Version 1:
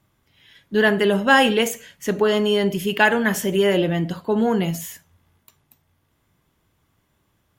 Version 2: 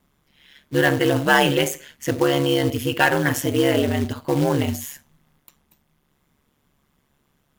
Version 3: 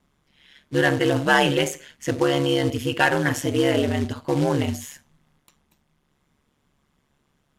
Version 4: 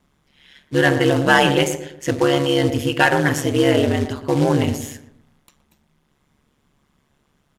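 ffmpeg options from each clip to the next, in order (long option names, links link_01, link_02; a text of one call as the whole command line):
ffmpeg -i in.wav -af "acontrast=51,acrusher=bits=4:mode=log:mix=0:aa=0.000001,aeval=exprs='val(0)*sin(2*PI*71*n/s)':channel_layout=same,volume=-3dB" out.wav
ffmpeg -i in.wav -af "lowpass=9600,volume=-1.5dB" out.wav
ffmpeg -i in.wav -filter_complex "[0:a]asplit=2[link_01][link_02];[link_02]adelay=119,lowpass=frequency=1000:poles=1,volume=-8.5dB,asplit=2[link_03][link_04];[link_04]adelay=119,lowpass=frequency=1000:poles=1,volume=0.42,asplit=2[link_05][link_06];[link_06]adelay=119,lowpass=frequency=1000:poles=1,volume=0.42,asplit=2[link_07][link_08];[link_08]adelay=119,lowpass=frequency=1000:poles=1,volume=0.42,asplit=2[link_09][link_10];[link_10]adelay=119,lowpass=frequency=1000:poles=1,volume=0.42[link_11];[link_01][link_03][link_05][link_07][link_09][link_11]amix=inputs=6:normalize=0,volume=3.5dB" out.wav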